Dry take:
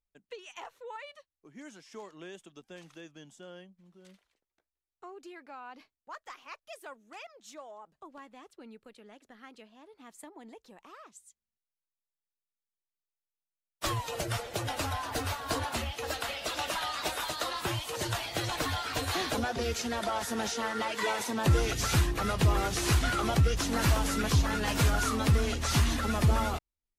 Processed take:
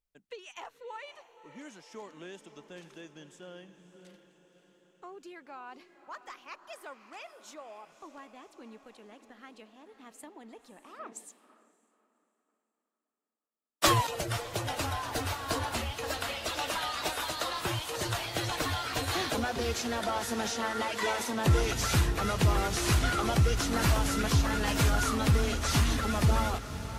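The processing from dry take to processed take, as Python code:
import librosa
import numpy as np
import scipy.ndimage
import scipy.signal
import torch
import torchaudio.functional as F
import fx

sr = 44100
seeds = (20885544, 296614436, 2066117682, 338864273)

y = fx.echo_diffused(x, sr, ms=571, feedback_pct=58, wet_db=-12.5)
y = fx.band_widen(y, sr, depth_pct=100, at=(10.99, 14.07))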